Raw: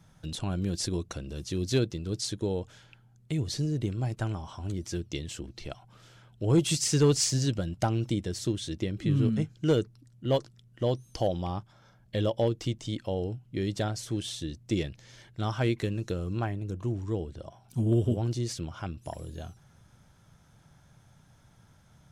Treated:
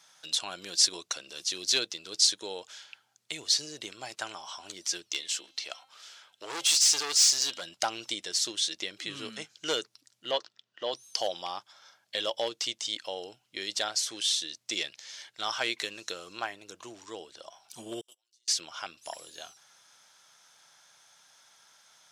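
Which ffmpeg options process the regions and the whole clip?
-filter_complex "[0:a]asettb=1/sr,asplit=3[s0][s1][s2];[s0]atrim=end=5.124[s3];[s1]atrim=start=5.12:end=7.62,asetpts=PTS-STARTPTS,afade=t=in:d=0.004:c=qsin,afade=t=out:st=2.496:d=0.004:c=qsin,lowshelf=f=160:g=-11.5,bandreject=f=265:t=h:w=4,bandreject=f=530:t=h:w=4,bandreject=f=795:t=h:w=4,bandreject=f=1060:t=h:w=4,bandreject=f=1325:t=h:w=4,bandreject=f=1590:t=h:w=4,bandreject=f=1855:t=h:w=4,bandreject=f=2120:t=h:w=4,bandreject=f=2385:t=h:w=4,bandreject=f=2650:t=h:w=4,bandreject=f=2915:t=h:w=4,bandreject=f=3180:t=h:w=4,bandreject=f=3445:t=h:w=4,bandreject=f=3710:t=h:w=4,bandreject=f=3975:t=h:w=4,bandreject=f=4240:t=h:w=4,volume=28.2,asoftclip=hard,volume=0.0355[s4];[s2]atrim=start=7.616[s5];[s3][s4]acrossfade=d=0.004:c1=hsin:c2=qsin[s6];[s6][s5]acrossfade=d=0.004:c1=qsin:c2=hsin,asettb=1/sr,asplit=3[s7][s8][s9];[s7]atrim=end=10.314[s10];[s8]atrim=start=10.31:end=10.93,asetpts=PTS-STARTPTS,afade=t=in:d=0.004:c=qsin,afade=t=out:st=0.616:d=0.004:c=qsin,highpass=150,lowpass=3500,bandreject=f=2200:w=11[s11];[s9]atrim=start=10.926[s12];[s10][s11]acrossfade=d=0.004:c1=hsin:c2=qsin[s13];[s13][s12]acrossfade=d=0.004:c1=qsin:c2=hsin,asettb=1/sr,asplit=3[s14][s15][s16];[s14]atrim=end=18.014[s17];[s15]atrim=start=18.01:end=18.48,asetpts=PTS-STARTPTS,afade=t=in:d=0.004:c=qsin,afade=t=out:st=0.466:d=0.004:c=qsin,agate=range=0.0282:threshold=0.0631:ratio=16:release=100:detection=peak,aderivative,aecho=1:1:5.6:0.4,atrim=end_sample=20727[s18];[s16]atrim=start=18.476[s19];[s17][s18]acrossfade=d=0.004:c1=hsin:c2=qsin[s20];[s20][s19]acrossfade=d=0.004:c1=qsin:c2=hsin,highpass=800,equalizer=f=5000:t=o:w=1.9:g=10,volume=1.33"

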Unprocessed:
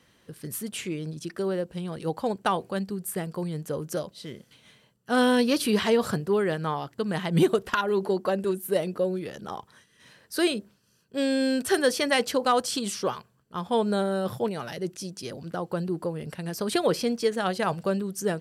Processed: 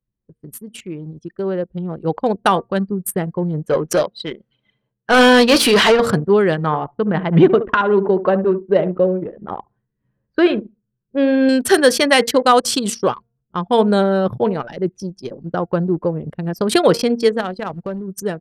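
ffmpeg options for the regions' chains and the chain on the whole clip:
-filter_complex "[0:a]asettb=1/sr,asplit=3[s0][s1][s2];[s0]atrim=end=3.664[s3];[s1]atrim=start=3.66:end=6,asetpts=PTS-STARTPTS,afade=t=in:d=0.004:c=qsin,afade=t=out:st=2.336:d=0.004:c=qsin,flanger=delay=5.2:depth=1.8:regen=-76:speed=1.2:shape=sinusoidal,asplit=2[s4][s5];[s5]highpass=f=720:p=1,volume=10,asoftclip=type=tanh:threshold=0.188[s6];[s4][s6]amix=inputs=2:normalize=0,lowpass=f=4500:p=1,volume=0.501[s7];[s2]atrim=start=5.996[s8];[s3][s7]acrossfade=d=0.004:c1=hsin:c2=qsin[s9];[s9][s8]acrossfade=d=0.004:c1=qsin:c2=hsin,asettb=1/sr,asplit=3[s10][s11][s12];[s10]atrim=end=6.664[s13];[s11]atrim=start=6.66:end=11.49,asetpts=PTS-STARTPTS,afade=t=in:d=0.004:c=qsin,afade=t=out:st=4.826:d=0.004:c=qsin,lowpass=2300,aecho=1:1:72|144|216:0.251|0.0804|0.0257,atrim=end_sample=213003[s14];[s12]atrim=start=11.486[s15];[s13][s14]acrossfade=d=0.004:c1=hsin:c2=qsin[s16];[s16][s15]acrossfade=d=0.004:c1=qsin:c2=hsin,asettb=1/sr,asplit=3[s17][s18][s19];[s17]atrim=end=17.404[s20];[s18]atrim=start=17.4:end=18.08,asetpts=PTS-STARTPTS,afade=t=in:d=0.004:c=qsin,afade=t=out:st=0.676:d=0.004:c=qsin,aeval=exprs='sgn(val(0))*max(abs(val(0))-0.00119,0)':c=same,acompressor=threshold=0.0282:ratio=3:attack=3.2:release=140:knee=1:detection=peak,acrusher=bits=3:mode=log:mix=0:aa=0.000001[s21];[s19]atrim=start=18.076[s22];[s20][s21]acrossfade=d=0.004:c1=hsin:c2=qsin[s23];[s23][s22]acrossfade=d=0.004:c1=qsin:c2=hsin,bandreject=f=232.7:t=h:w=4,bandreject=f=465.4:t=h:w=4,bandreject=f=698.1:t=h:w=4,bandreject=f=930.8:t=h:w=4,bandreject=f=1163.5:t=h:w=4,bandreject=f=1396.2:t=h:w=4,bandreject=f=1628.9:t=h:w=4,bandreject=f=1861.6:t=h:w=4,bandreject=f=2094.3:t=h:w=4,anlmdn=15.8,dynaudnorm=f=630:g=5:m=3.76,volume=1.12"

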